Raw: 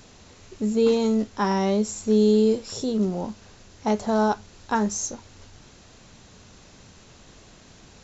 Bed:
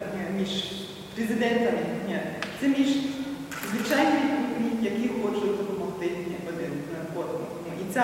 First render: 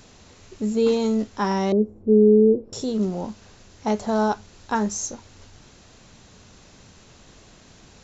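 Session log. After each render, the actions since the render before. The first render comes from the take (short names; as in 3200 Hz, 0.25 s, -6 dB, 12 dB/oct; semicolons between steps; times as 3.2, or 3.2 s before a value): 1.72–2.73 synth low-pass 390 Hz, resonance Q 2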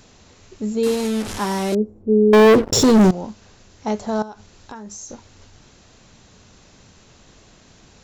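0.83–1.75 delta modulation 64 kbps, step -23.5 dBFS; 2.33–3.11 sample leveller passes 5; 4.22–5.1 compressor 8:1, threshold -32 dBFS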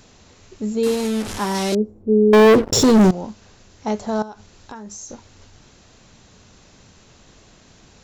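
1.54–2.08 dynamic EQ 4800 Hz, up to +7 dB, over -46 dBFS, Q 0.72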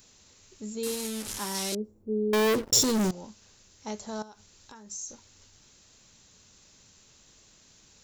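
pre-emphasis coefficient 0.8; notch 710 Hz, Q 12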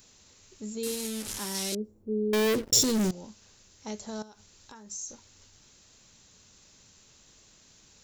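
dynamic EQ 990 Hz, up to -6 dB, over -46 dBFS, Q 1.1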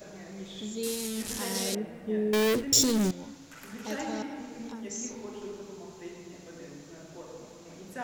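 add bed -14 dB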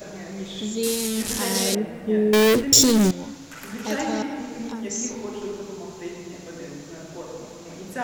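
gain +8.5 dB; limiter -2 dBFS, peak gain reduction 1 dB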